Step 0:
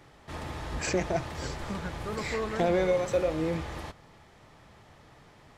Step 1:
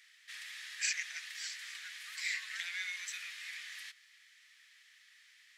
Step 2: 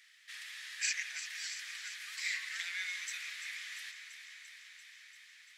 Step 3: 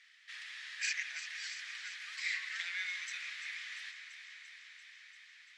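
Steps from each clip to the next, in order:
elliptic high-pass 1.8 kHz, stop band 80 dB; trim +1.5 dB
echo whose repeats swap between lows and highs 171 ms, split 2.4 kHz, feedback 87%, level -9.5 dB
distance through air 94 m; trim +1.5 dB

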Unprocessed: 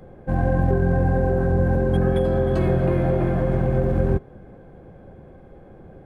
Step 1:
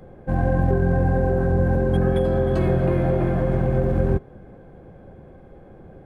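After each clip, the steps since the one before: no audible change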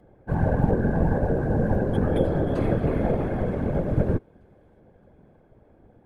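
whisper effect; feedback echo behind a high-pass 618 ms, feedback 54%, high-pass 2.7 kHz, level -19.5 dB; upward expansion 1.5:1, over -34 dBFS; trim -1 dB

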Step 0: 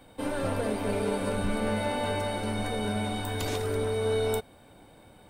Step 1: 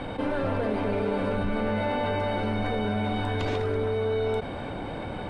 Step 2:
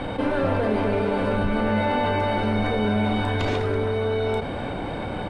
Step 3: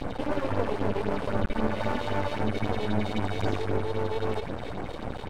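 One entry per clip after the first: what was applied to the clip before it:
low-pass 2.9 kHz 12 dB/octave; level flattener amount 70%
doubling 33 ms -11 dB; trim +4.5 dB
phase shifter stages 4, 3.8 Hz, lowest notch 150–4000 Hz; half-wave rectifier

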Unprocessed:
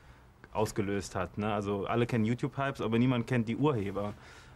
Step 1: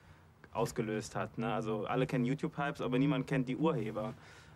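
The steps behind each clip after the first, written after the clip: frequency shift +29 Hz; trim -3.5 dB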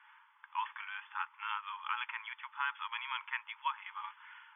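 FFT band-pass 830–3500 Hz; trim +4.5 dB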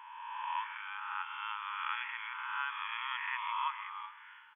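reverse spectral sustain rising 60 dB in 1.90 s; delay 133 ms -15 dB; trim -4 dB

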